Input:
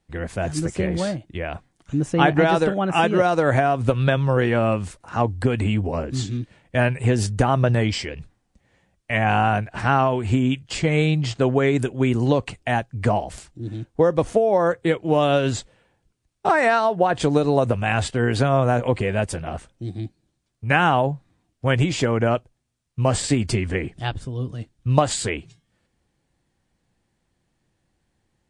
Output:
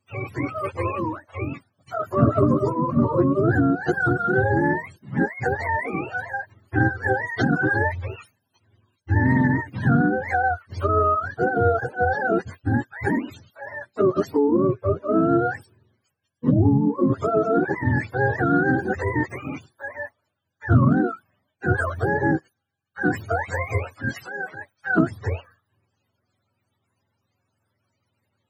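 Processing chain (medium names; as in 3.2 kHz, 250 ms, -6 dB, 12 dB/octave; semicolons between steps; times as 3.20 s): spectrum inverted on a logarithmic axis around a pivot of 440 Hz; loudspeaker Doppler distortion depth 0.1 ms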